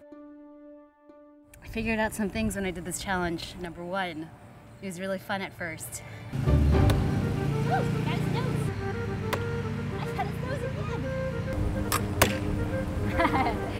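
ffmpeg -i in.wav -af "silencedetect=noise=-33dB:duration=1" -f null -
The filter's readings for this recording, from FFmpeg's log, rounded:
silence_start: 0.00
silence_end: 1.54 | silence_duration: 1.54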